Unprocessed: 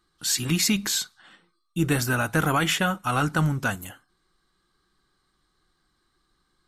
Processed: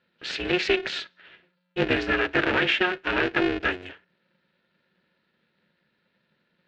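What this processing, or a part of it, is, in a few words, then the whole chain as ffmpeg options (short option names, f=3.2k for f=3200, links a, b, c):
ring modulator pedal into a guitar cabinet: -af "aeval=exprs='val(0)*sgn(sin(2*PI*180*n/s))':c=same,highpass=93,equalizer=f=120:t=q:w=4:g=-8,equalizer=f=400:t=q:w=4:g=4,equalizer=f=770:t=q:w=4:g=-4,equalizer=f=1.1k:t=q:w=4:g=-10,equalizer=f=1.7k:t=q:w=4:g=5,equalizer=f=2.6k:t=q:w=4:g=6,lowpass=f=3.7k:w=0.5412,lowpass=f=3.7k:w=1.3066"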